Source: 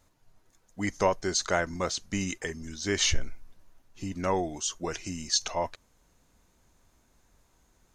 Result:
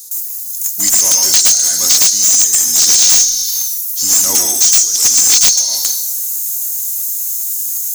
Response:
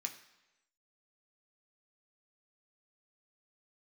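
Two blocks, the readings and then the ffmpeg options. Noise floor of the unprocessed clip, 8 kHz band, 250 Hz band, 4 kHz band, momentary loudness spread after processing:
-68 dBFS, +28.0 dB, -0.5 dB, +19.5 dB, 10 LU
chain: -filter_complex "[0:a]asplit=2[a][b];[b]aemphasis=mode=production:type=50fm[c];[1:a]atrim=start_sample=2205,adelay=112[d];[c][d]afir=irnorm=-1:irlink=0,volume=2dB[e];[a][e]amix=inputs=2:normalize=0,flanger=delay=1.5:depth=3.3:regen=-88:speed=2:shape=triangular,aexciter=amount=12.5:drive=7.8:freq=3.9k,acompressor=threshold=-17dB:ratio=5,crystalizer=i=6.5:c=0,acontrast=51,equalizer=f=125:t=o:w=1:g=-4,equalizer=f=250:t=o:w=1:g=5,equalizer=f=8k:t=o:w=1:g=-4,volume=-2.5dB"

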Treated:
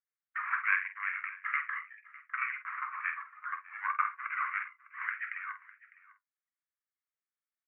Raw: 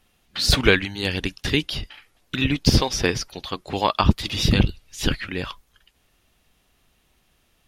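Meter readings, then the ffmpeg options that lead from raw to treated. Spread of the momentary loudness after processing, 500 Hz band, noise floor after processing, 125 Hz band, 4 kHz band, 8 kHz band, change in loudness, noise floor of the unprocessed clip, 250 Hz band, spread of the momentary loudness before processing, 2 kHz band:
11 LU, under -40 dB, under -85 dBFS, under -40 dB, under -40 dB, under -40 dB, -12.5 dB, -65 dBFS, under -40 dB, 13 LU, -5.0 dB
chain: -filter_complex "[0:a]aeval=exprs='if(lt(val(0),0),0.708*val(0),val(0))':c=same,afftdn=nr=34:nf=-39,asplit=2[a][b];[b]acompressor=threshold=-34dB:ratio=6,volume=1dB[c];[a][c]amix=inputs=2:normalize=0,acrusher=samples=9:mix=1:aa=0.000001,asoftclip=type=tanh:threshold=-4dB,flanger=delay=8.7:depth=2.7:regen=-59:speed=0.94:shape=sinusoidal,asuperpass=centerf=1600:order=12:qfactor=1.3,asplit=2[d][e];[e]adelay=48,volume=-9.5dB[f];[d][f]amix=inputs=2:normalize=0,aecho=1:1:604:0.1"

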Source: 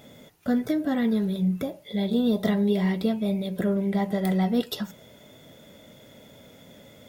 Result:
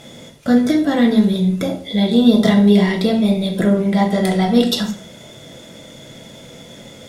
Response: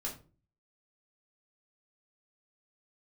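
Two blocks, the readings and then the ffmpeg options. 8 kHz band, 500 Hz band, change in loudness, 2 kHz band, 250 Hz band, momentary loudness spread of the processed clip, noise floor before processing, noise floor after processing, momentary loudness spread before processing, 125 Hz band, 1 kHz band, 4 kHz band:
n/a, +9.5 dB, +10.0 dB, +11.0 dB, +10.5 dB, 9 LU, -52 dBFS, -40 dBFS, 8 LU, +9.0 dB, +11.0 dB, +14.0 dB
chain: -filter_complex "[0:a]lowpass=8.3k,highshelf=f=3.9k:g=9.5,asplit=2[a][b];[1:a]atrim=start_sample=2205,atrim=end_sample=6615,asetrate=24696,aresample=44100[c];[b][c]afir=irnorm=-1:irlink=0,volume=-2.5dB[d];[a][d]amix=inputs=2:normalize=0,volume=4dB"

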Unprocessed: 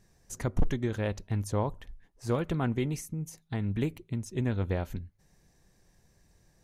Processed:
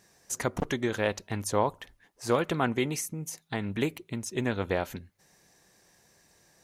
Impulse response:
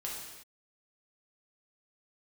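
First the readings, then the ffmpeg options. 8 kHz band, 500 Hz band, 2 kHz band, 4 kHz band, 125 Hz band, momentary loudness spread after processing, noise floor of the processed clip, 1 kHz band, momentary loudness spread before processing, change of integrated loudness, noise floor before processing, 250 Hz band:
+8.5 dB, +4.5 dB, +8.0 dB, +8.5 dB, -5.0 dB, 10 LU, -68 dBFS, +7.0 dB, 10 LU, +2.0 dB, -67 dBFS, +0.5 dB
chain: -af "highpass=f=550:p=1,volume=8.5dB"

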